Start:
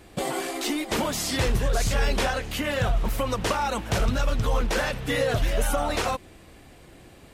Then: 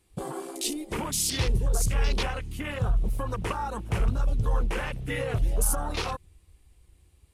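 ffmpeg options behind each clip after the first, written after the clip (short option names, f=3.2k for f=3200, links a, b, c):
-af "equalizer=f=250:t=o:w=0.67:g=-7,equalizer=f=630:t=o:w=0.67:g=-11,equalizer=f=1.6k:t=o:w=0.67:g=-7,equalizer=f=10k:t=o:w=0.67:g=10,afwtdn=0.02"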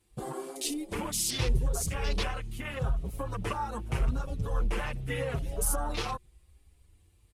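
-filter_complex "[0:a]asplit=2[a][b];[b]adelay=6.3,afreqshift=0.83[c];[a][c]amix=inputs=2:normalize=1"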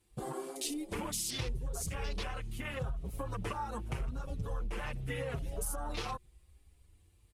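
-af "acompressor=threshold=-31dB:ratio=6,volume=-2dB"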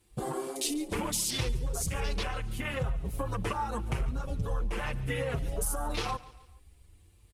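-af "aecho=1:1:142|284|426:0.112|0.0494|0.0217,volume=5.5dB"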